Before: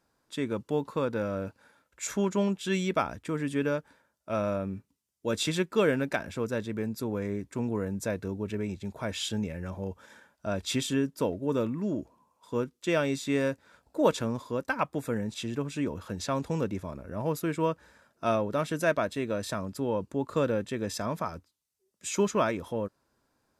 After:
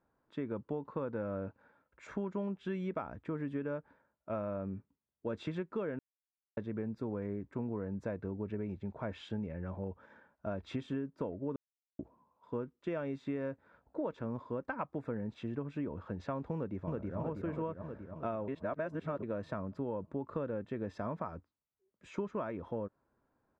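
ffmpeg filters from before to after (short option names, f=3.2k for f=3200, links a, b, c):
-filter_complex "[0:a]asplit=2[a][b];[b]afade=t=in:st=16.55:d=0.01,afade=t=out:st=17.18:d=0.01,aecho=0:1:320|640|960|1280|1600|1920|2240|2560|2880|3200|3520:0.891251|0.579313|0.376554|0.24476|0.159094|0.103411|0.0672172|0.0436912|0.0283992|0.0184595|0.0119987[c];[a][c]amix=inputs=2:normalize=0,asplit=7[d][e][f][g][h][i][j];[d]atrim=end=5.99,asetpts=PTS-STARTPTS,afade=t=out:st=5.986:d=0.004:c=hsin[k];[e]atrim=start=5.99:end=6.57,asetpts=PTS-STARTPTS,volume=0[l];[f]atrim=start=6.57:end=11.56,asetpts=PTS-STARTPTS,afade=t=in:d=0.004:c=hsin,afade=t=out:st=4.986:d=0.004:c=hsin[m];[g]atrim=start=11.56:end=11.99,asetpts=PTS-STARTPTS,volume=0[n];[h]atrim=start=11.99:end=18.482,asetpts=PTS-STARTPTS,afade=t=in:d=0.004:c=hsin[o];[i]atrim=start=18.478:end=19.232,asetpts=PTS-STARTPTS,areverse[p];[j]atrim=start=19.228[q];[k][l][m][n][o]concat=n=5:v=0:a=1[r];[r][p]acrossfade=d=0.004:c1=hsin:c2=hsin[s];[s][q]acrossfade=d=0.004:c1=hsin:c2=hsin,lowpass=1.5k,acompressor=threshold=-30dB:ratio=12,volume=-3dB"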